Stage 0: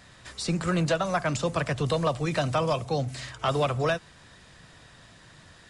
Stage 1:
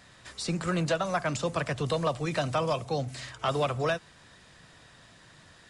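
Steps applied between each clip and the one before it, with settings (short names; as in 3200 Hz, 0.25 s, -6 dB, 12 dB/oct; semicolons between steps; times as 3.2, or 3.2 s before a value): low shelf 110 Hz -5 dB; gain -2 dB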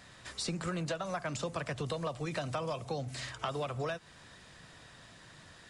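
compressor, threshold -33 dBFS, peak gain reduction 10 dB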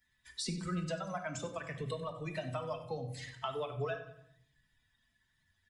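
per-bin expansion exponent 2; feedback echo 94 ms, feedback 44%, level -14.5 dB; reverb RT60 0.70 s, pre-delay 5 ms, DRR 4.5 dB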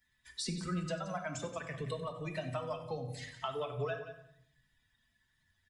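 echo 0.176 s -13 dB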